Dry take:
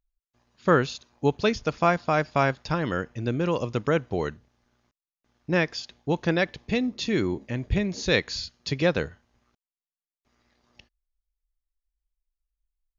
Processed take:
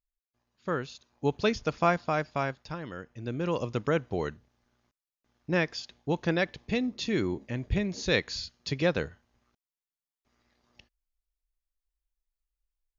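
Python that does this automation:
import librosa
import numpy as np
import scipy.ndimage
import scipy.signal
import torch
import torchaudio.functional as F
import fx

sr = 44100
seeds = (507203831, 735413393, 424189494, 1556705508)

y = fx.gain(x, sr, db=fx.line((0.87, -11.0), (1.39, -3.0), (1.92, -3.0), (2.95, -13.0), (3.54, -3.5)))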